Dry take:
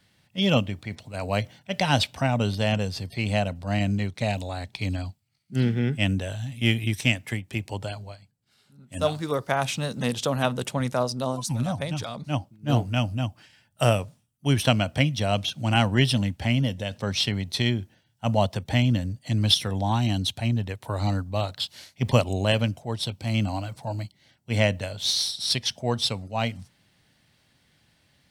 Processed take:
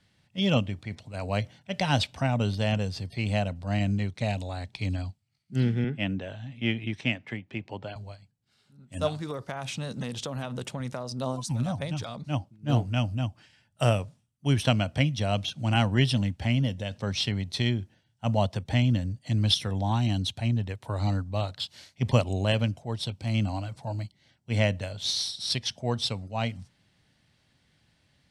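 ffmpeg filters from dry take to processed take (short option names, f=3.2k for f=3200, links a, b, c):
-filter_complex "[0:a]asettb=1/sr,asplit=3[a][b][c];[a]atrim=end=5.844[d];[b]atrim=start=5.84:end=7.96,asetpts=PTS-STARTPTS,afade=t=in:d=0.004:c=qsin,afade=t=out:st=2.116:d=0.004:c=qsin,highpass=160,lowpass=3.1k[e];[c]atrim=start=7.956[f];[d][e]acrossfade=d=0.004:c1=hsin:c2=qsin[g];[g][f]acrossfade=d=0.004:c1=qsin:c2=hsin,asettb=1/sr,asplit=3[h][i][j];[h]atrim=end=9.084[k];[i]atrim=start=9.08:end=11.12,asetpts=PTS-STARTPTS,afade=t=in:d=0.004:c=qsin,afade=t=out:st=2.036:d=0.004:c=qsin,acompressor=threshold=-26dB:ratio=6:attack=3.2:release=140:knee=1:detection=peak[l];[j]atrim=start=11.116[m];[k][l]acrossfade=d=0.004:c1=hsin:c2=qsin[n];[n][m]acrossfade=d=0.004:c1=qsin:c2=hsin,lowpass=9.3k,lowshelf=f=180:g=4,volume=-4dB"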